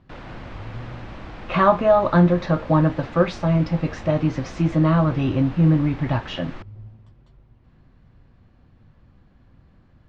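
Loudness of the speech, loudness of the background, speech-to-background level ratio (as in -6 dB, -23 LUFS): -20.0 LUFS, -39.0 LUFS, 19.0 dB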